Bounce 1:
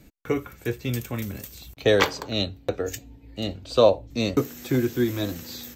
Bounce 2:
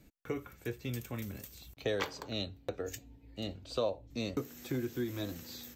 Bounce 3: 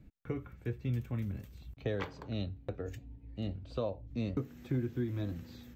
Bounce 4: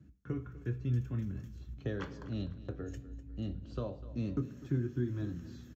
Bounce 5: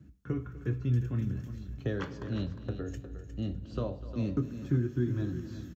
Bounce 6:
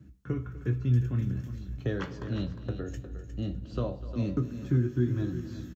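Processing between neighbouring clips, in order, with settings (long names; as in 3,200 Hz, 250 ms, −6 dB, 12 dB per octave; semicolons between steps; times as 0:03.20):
downward compressor 2 to 1, threshold −25 dBFS, peak gain reduction 8 dB; level −9 dB
bass and treble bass +11 dB, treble −14 dB; level −4 dB
repeating echo 250 ms, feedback 41%, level −16.5 dB; convolution reverb RT60 0.55 s, pre-delay 3 ms, DRR 10 dB; level −7.5 dB
single-tap delay 357 ms −11 dB; level +4 dB
double-tracking delay 16 ms −10.5 dB; level +1.5 dB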